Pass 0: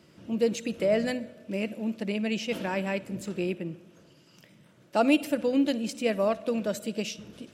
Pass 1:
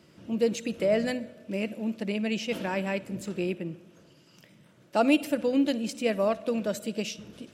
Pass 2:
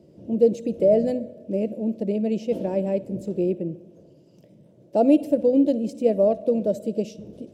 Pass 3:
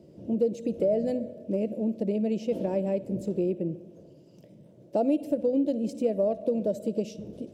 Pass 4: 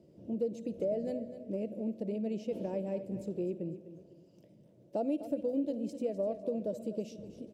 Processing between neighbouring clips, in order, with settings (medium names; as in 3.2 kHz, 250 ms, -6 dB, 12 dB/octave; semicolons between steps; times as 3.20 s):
no audible change
FFT filter 260 Hz 0 dB, 390 Hz +3 dB, 600 Hz +3 dB, 1.3 kHz -23 dB, 5.2 kHz -14 dB; trim +5 dB
compression 2.5:1, threshold -25 dBFS, peak gain reduction 9 dB
feedback delay 251 ms, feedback 33%, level -13 dB; trim -8 dB